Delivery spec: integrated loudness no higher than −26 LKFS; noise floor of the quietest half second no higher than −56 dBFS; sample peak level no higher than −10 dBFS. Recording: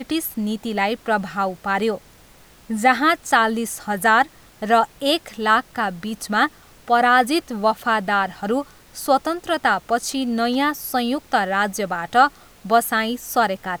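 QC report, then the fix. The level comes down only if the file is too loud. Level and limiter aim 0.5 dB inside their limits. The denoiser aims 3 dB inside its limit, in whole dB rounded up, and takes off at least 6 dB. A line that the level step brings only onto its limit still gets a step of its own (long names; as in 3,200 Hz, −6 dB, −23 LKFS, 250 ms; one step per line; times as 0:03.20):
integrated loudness −20.5 LKFS: out of spec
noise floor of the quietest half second −49 dBFS: out of spec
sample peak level −3.0 dBFS: out of spec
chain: broadband denoise 6 dB, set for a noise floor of −49 dBFS
level −6 dB
brickwall limiter −10.5 dBFS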